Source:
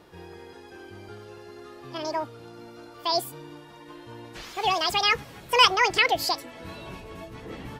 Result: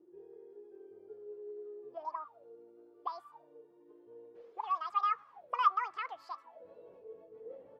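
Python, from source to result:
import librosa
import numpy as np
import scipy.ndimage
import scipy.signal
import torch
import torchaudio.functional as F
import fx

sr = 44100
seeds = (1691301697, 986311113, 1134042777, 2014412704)

y = fx.auto_wah(x, sr, base_hz=330.0, top_hz=1200.0, q=19.0, full_db=-26.0, direction='up')
y = y * 10.0 ** (4.0 / 20.0)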